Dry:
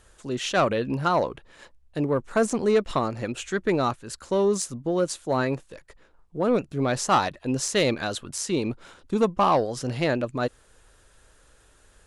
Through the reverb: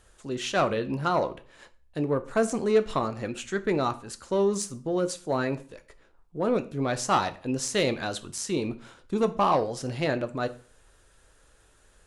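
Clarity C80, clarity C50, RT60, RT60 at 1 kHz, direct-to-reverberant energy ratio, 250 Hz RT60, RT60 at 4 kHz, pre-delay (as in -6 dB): 21.0 dB, 17.0 dB, 0.45 s, 0.40 s, 9.5 dB, 0.45 s, 0.35 s, 6 ms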